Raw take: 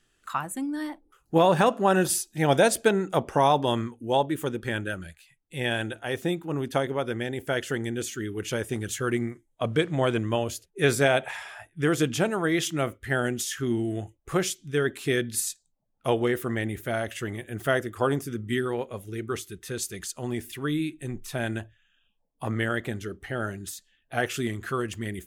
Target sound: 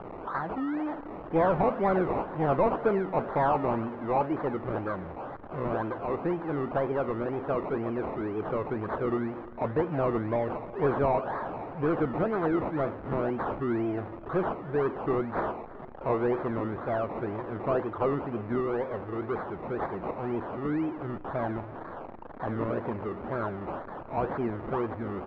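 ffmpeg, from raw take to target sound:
ffmpeg -i in.wav -filter_complex "[0:a]aeval=exprs='val(0)+0.5*0.0251*sgn(val(0))':channel_layout=same,acrusher=samples=22:mix=1:aa=0.000001:lfo=1:lforange=13.2:lforate=2,asplit=2[link_01][link_02];[link_02]highpass=frequency=720:poles=1,volume=16dB,asoftclip=type=tanh:threshold=-9dB[link_03];[link_01][link_03]amix=inputs=2:normalize=0,lowpass=frequency=1100:poles=1,volume=-6dB,lowpass=1400,aecho=1:1:329|658|987|1316|1645:0.106|0.0593|0.0332|0.0186|0.0104,volume=-5dB" out.wav

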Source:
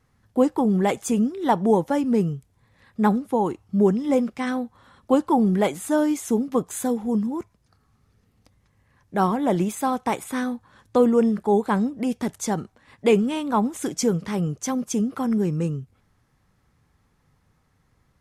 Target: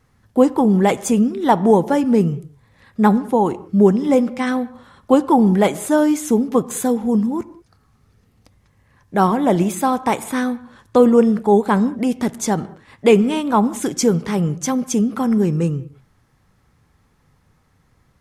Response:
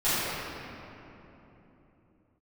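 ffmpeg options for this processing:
-filter_complex "[0:a]asplit=2[link_01][link_02];[1:a]atrim=start_sample=2205,afade=type=out:start_time=0.26:duration=0.01,atrim=end_sample=11907,lowpass=3800[link_03];[link_02][link_03]afir=irnorm=-1:irlink=0,volume=-30dB[link_04];[link_01][link_04]amix=inputs=2:normalize=0,volume=5.5dB"

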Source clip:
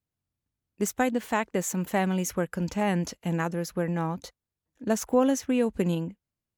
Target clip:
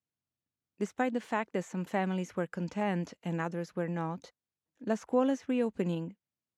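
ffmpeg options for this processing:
ffmpeg -i in.wav -filter_complex "[0:a]highpass=130,lowpass=7600,acrossover=split=2900[link_01][link_02];[link_02]acompressor=threshold=-46dB:ratio=4:attack=1:release=60[link_03];[link_01][link_03]amix=inputs=2:normalize=0,volume=-5dB" out.wav

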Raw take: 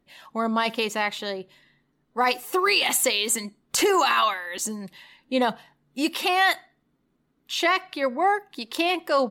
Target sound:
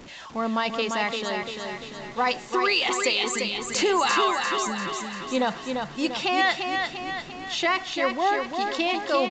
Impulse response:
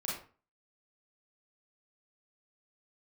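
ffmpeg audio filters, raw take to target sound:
-af "aeval=exprs='val(0)+0.5*0.015*sgn(val(0))':channel_layout=same,aecho=1:1:345|690|1035|1380|1725|2070|2415:0.562|0.304|0.164|0.0885|0.0478|0.0258|0.0139,aresample=16000,aresample=44100,volume=-2.5dB"

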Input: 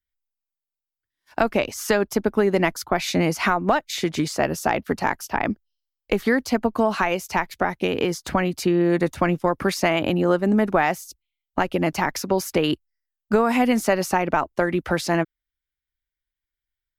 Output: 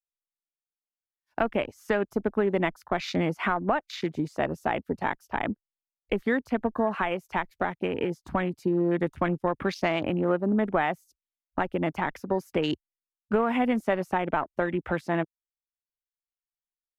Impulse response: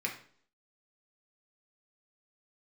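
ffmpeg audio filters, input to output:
-af "afwtdn=0.0251,adynamicequalizer=threshold=0.00631:dfrequency=5600:dqfactor=0.87:tfrequency=5600:tqfactor=0.87:attack=5:release=100:ratio=0.375:range=2:mode=cutabove:tftype=bell,volume=-5.5dB"

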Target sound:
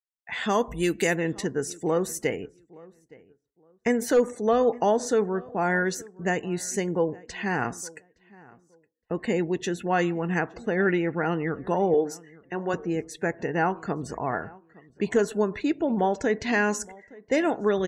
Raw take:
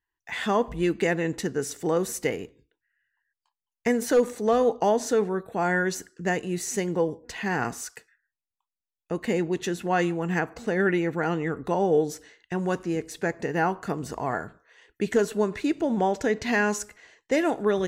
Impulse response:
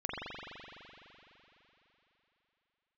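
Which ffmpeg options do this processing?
-filter_complex "[0:a]asplit=3[link_01][link_02][link_03];[link_01]afade=type=out:start_time=0.49:duration=0.02[link_04];[link_02]aemphasis=mode=production:type=75fm,afade=type=in:start_time=0.49:duration=0.02,afade=type=out:start_time=1.15:duration=0.02[link_05];[link_03]afade=type=in:start_time=1.15:duration=0.02[link_06];[link_04][link_05][link_06]amix=inputs=3:normalize=0,asettb=1/sr,asplit=3[link_07][link_08][link_09];[link_07]atrim=end=11.944[link_10];[link_08]atrim=start=11.94:end=12.74,asetpts=PTS-STARTPTS,afade=type=in:duration=0.004:curve=qsin,afade=type=out:start_time=0.796:duration=0.004:curve=qsin,highpass=260[link_11];[link_09]atrim=start=12.736[link_12];[link_10][link_11]acrossfade=duration=0.004:curve1=hsin:curve2=qsin[link_13];[link_13][link_12]acrossfade=duration=0.004:curve1=qsin:curve2=hsin,afftdn=noise_reduction=33:noise_floor=-47,asplit=2[link_14][link_15];[link_15]adelay=867,lowpass=frequency=1800:poles=1,volume=-22.5dB,asplit=2[link_16][link_17];[link_17]adelay=867,lowpass=frequency=1800:poles=1,volume=0.23[link_18];[link_14][link_16][link_18]amix=inputs=3:normalize=0"

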